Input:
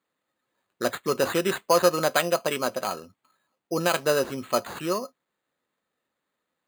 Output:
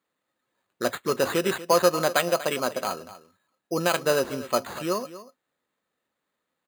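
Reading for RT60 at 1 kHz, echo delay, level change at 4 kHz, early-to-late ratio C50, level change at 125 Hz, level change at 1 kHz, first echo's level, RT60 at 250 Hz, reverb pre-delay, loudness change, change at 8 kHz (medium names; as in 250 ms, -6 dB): no reverb, 240 ms, 0.0 dB, no reverb, 0.0 dB, 0.0 dB, -15.5 dB, no reverb, no reverb, 0.0 dB, 0.0 dB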